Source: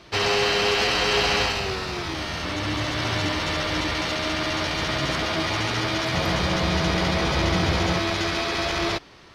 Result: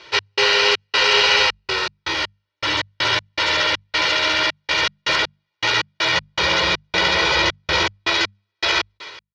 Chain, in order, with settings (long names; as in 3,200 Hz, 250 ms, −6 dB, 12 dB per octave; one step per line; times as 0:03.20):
spectral tilt +4 dB per octave
in parallel at −2 dB: speech leveller within 3 dB 0.5 s
on the sum: high-frequency loss of the air 190 metres
comb filter 2.1 ms, depth 71%
feedback echo with a high-pass in the loop 123 ms, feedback 57%, level −19.5 dB
gate pattern "x.xx.xxx.x.x..x." 80 BPM −60 dB
mains-hum notches 50/100/150/200 Hz